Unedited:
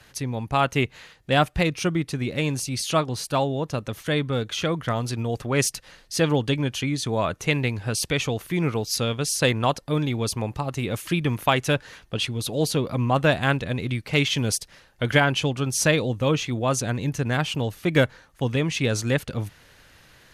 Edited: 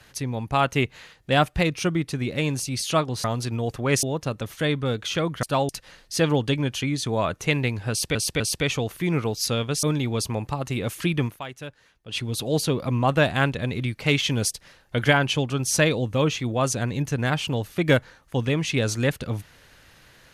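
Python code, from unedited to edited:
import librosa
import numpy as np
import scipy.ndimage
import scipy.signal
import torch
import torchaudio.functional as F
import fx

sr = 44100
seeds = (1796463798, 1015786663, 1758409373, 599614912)

y = fx.edit(x, sr, fx.swap(start_s=3.24, length_s=0.26, other_s=4.9, other_length_s=0.79),
    fx.repeat(start_s=7.9, length_s=0.25, count=3),
    fx.cut(start_s=9.33, length_s=0.57),
    fx.fade_down_up(start_s=11.31, length_s=0.96, db=-15.0, fade_s=0.12), tone=tone)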